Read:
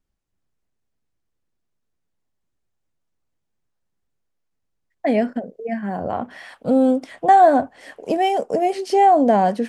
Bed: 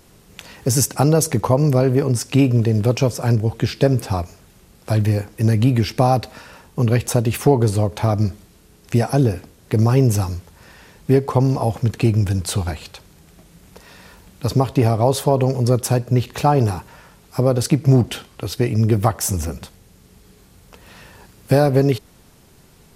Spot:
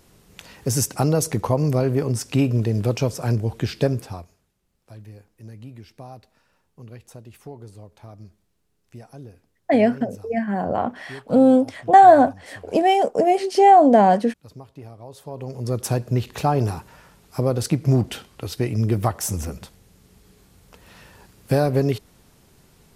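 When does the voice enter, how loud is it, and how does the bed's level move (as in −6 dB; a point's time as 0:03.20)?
4.65 s, +2.0 dB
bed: 0:03.86 −4.5 dB
0:04.57 −24.5 dB
0:15.08 −24.5 dB
0:15.86 −4.5 dB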